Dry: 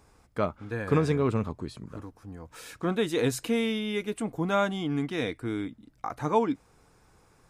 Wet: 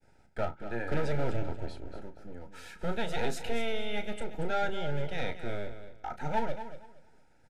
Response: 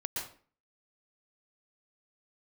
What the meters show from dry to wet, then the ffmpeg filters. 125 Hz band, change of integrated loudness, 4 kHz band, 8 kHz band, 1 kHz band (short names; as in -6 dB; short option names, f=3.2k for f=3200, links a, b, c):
-6.0 dB, -6.0 dB, -4.5 dB, -8.0 dB, -3.5 dB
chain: -filter_complex "[0:a]lowpass=f=2.7k:p=1,acrossover=split=560[a][b];[a]aeval=exprs='abs(val(0))':c=same[c];[c][b]amix=inputs=2:normalize=0,agate=range=-33dB:threshold=-58dB:ratio=3:detection=peak,asoftclip=type=tanh:threshold=-20.5dB,asuperstop=centerf=1100:order=20:qfactor=3.8,asplit=2[d][e];[e]adelay=34,volume=-11dB[f];[d][f]amix=inputs=2:normalize=0,aecho=1:1:234|468|702:0.266|0.0585|0.0129"